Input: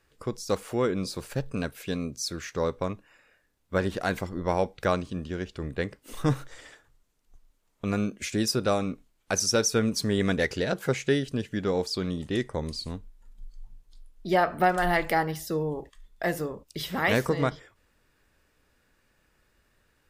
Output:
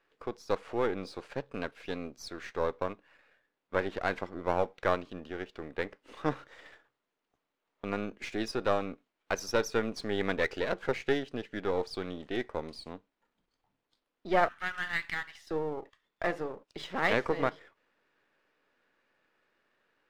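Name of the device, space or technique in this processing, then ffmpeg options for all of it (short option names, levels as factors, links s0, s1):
crystal radio: -filter_complex "[0:a]asettb=1/sr,asplit=3[s0][s1][s2];[s0]atrim=end=14.484[s3];[s1]atrim=start=14.48:end=15.51,asetpts=PTS-STARTPTS,afade=t=in:d=0.004:c=qsin,afade=t=out:st=1.026:d=0.004:c=qsin,highpass=f=1400:w=0.5412,highpass=f=1400:w=1.3066[s4];[s2]atrim=start=15.506[s5];[s3][s4]acrossfade=d=0.004:c1=hsin:c2=qsin[s6];[s6][s5]acrossfade=d=0.004:c1=qsin:c2=hsin,highpass=320,lowpass=3000,aeval=exprs='if(lt(val(0),0),0.447*val(0),val(0))':c=same"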